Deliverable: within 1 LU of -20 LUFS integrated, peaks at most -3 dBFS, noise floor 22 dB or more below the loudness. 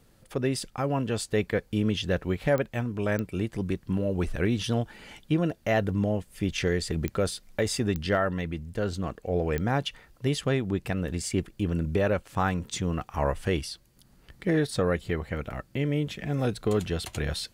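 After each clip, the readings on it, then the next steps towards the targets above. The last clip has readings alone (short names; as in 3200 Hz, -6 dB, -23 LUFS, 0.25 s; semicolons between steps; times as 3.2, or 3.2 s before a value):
clicks 5; loudness -29.0 LUFS; peak -14.0 dBFS; loudness target -20.0 LUFS
-> de-click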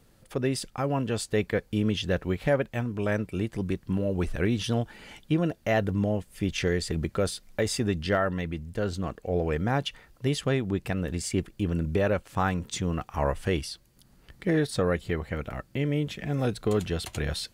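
clicks 0; loudness -29.0 LUFS; peak -14.5 dBFS; loudness target -20.0 LUFS
-> gain +9 dB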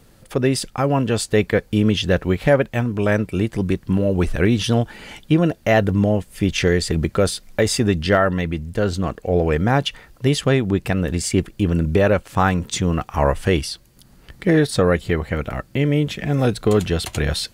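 loudness -20.0 LUFS; peak -5.5 dBFS; noise floor -51 dBFS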